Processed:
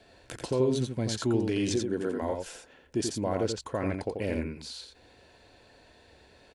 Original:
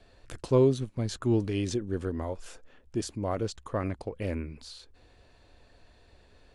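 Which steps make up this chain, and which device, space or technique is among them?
PA system with an anti-feedback notch (high-pass filter 170 Hz 6 dB per octave; Butterworth band-reject 1,200 Hz, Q 7.1; brickwall limiter −22.5 dBFS, peak gain reduction 10 dB)
0:01.76–0:02.21: high-pass filter 86 Hz → 290 Hz 12 dB per octave
single-tap delay 86 ms −5 dB
level +4 dB

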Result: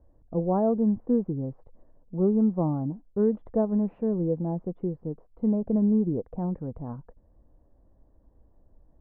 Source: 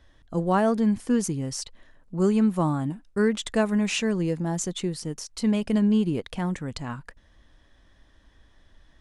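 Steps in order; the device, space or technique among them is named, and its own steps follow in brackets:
under water (low-pass filter 810 Hz 24 dB per octave; parametric band 490 Hz +4 dB 0.23 octaves)
level −1.5 dB

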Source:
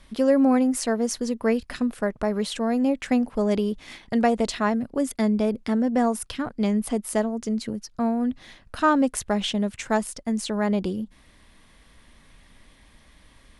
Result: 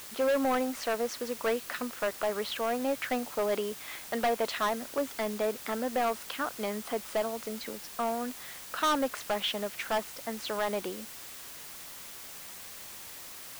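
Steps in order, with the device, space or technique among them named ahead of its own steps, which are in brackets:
drive-through speaker (band-pass filter 530–3,400 Hz; parametric band 1,300 Hz +5 dB 0.44 octaves; hard clipping −23.5 dBFS, distortion −7 dB; white noise bed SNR 12 dB)

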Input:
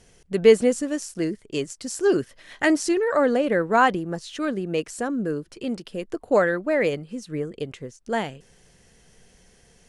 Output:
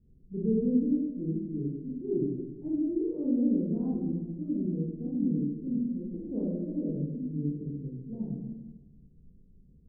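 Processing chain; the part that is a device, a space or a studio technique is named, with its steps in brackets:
next room (low-pass filter 280 Hz 24 dB per octave; convolution reverb RT60 1.1 s, pre-delay 23 ms, DRR −6.5 dB)
level −7 dB

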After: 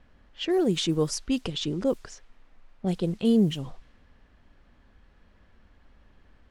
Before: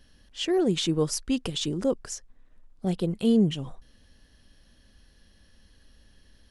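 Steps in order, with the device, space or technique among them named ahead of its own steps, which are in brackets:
cassette deck with a dynamic noise filter (white noise bed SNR 29 dB; low-pass that shuts in the quiet parts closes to 1,600 Hz, open at −20.5 dBFS)

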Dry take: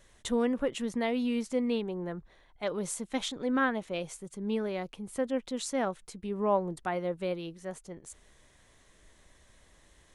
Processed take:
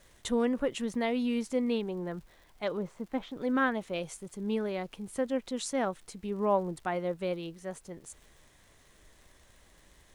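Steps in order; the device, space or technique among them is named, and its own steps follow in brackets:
0:02.77–0:03.37: Bessel low-pass filter 1,300 Hz, order 2
vinyl LP (tape wow and flutter 8 cents; surface crackle 86 per second −49 dBFS; pink noise bed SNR 36 dB)

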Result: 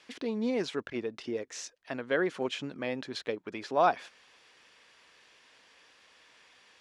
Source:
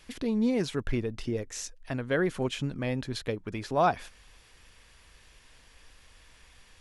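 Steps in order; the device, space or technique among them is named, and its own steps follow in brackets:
public-address speaker with an overloaded transformer (saturating transformer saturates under 110 Hz; band-pass filter 300–5,900 Hz)

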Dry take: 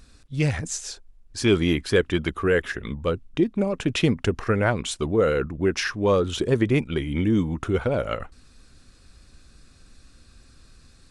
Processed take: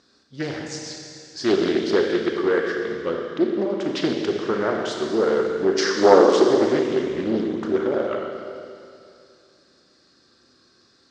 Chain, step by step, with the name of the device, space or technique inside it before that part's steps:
0:05.78–0:06.47: octave-band graphic EQ 125/250/500/1,000/8,000 Hz −6/+11/+5/+8/+11 dB
four-comb reverb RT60 2.5 s, combs from 28 ms, DRR 0.5 dB
full-range speaker at full volume (highs frequency-modulated by the lows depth 0.59 ms; loudspeaker in its box 260–6,100 Hz, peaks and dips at 370 Hz +7 dB, 2,500 Hz −9 dB, 4,900 Hz +5 dB)
level −2.5 dB

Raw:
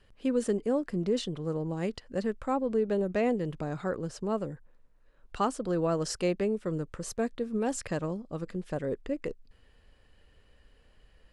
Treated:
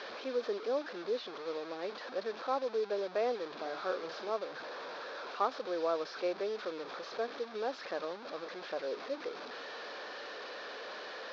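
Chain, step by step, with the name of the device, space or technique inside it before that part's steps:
digital answering machine (band-pass filter 340–3,100 Hz; linear delta modulator 32 kbit/s, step −34 dBFS; loudspeaker in its box 470–4,500 Hz, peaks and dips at 880 Hz −3 dB, 2,000 Hz −8 dB, 2,900 Hz −10 dB)
0:03.51–0:04.30: double-tracking delay 43 ms −6 dB

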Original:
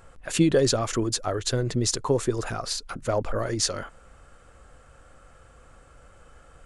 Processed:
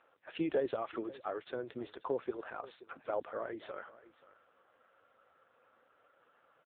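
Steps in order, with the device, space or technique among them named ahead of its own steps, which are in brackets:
0:00.86–0:02.60: high-pass filter 58 Hz 12 dB per octave
satellite phone (band-pass filter 390–3,100 Hz; single-tap delay 529 ms −18.5 dB; level −8 dB; AMR narrowband 5.9 kbit/s 8,000 Hz)

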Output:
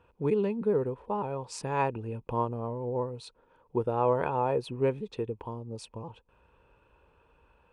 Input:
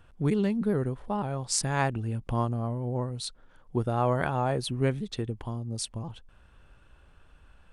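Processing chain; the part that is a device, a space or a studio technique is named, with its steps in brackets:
high-pass filter 41 Hz
inside a helmet (high-shelf EQ 4,900 Hz −10 dB; hollow resonant body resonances 470/920/2,500 Hz, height 14 dB, ringing for 20 ms)
level −7.5 dB

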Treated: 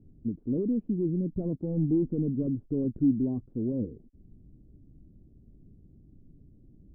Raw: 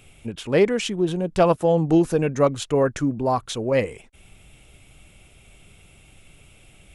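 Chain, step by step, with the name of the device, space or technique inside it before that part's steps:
overdriven synthesiser ladder filter (soft clipping −20 dBFS, distortion −9 dB; transistor ladder low-pass 320 Hz, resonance 50%)
level +6 dB

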